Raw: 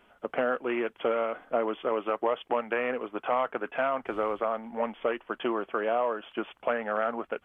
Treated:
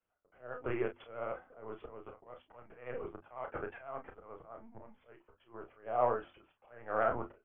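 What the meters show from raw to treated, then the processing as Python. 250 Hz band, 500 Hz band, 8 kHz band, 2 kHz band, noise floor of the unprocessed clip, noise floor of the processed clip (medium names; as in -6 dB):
-12.0 dB, -10.5 dB, no reading, -12.0 dB, -64 dBFS, -79 dBFS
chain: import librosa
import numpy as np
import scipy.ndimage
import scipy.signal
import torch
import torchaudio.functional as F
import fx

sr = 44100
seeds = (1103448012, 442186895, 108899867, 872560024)

p1 = fx.auto_swell(x, sr, attack_ms=300.0)
p2 = scipy.signal.sosfilt(scipy.signal.butter(2, 2000.0, 'lowpass', fs=sr, output='sos'), p1)
p3 = fx.lpc_vocoder(p2, sr, seeds[0], excitation='pitch_kept', order=16)
p4 = fx.vibrato(p3, sr, rate_hz=14.0, depth_cents=49.0)
p5 = fx.hum_notches(p4, sr, base_hz=50, count=7)
p6 = p5 + fx.room_early_taps(p5, sr, ms=(32, 44), db=(-7.5, -12.5), dry=0)
p7 = fx.band_widen(p6, sr, depth_pct=70)
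y = F.gain(torch.from_numpy(p7), -7.0).numpy()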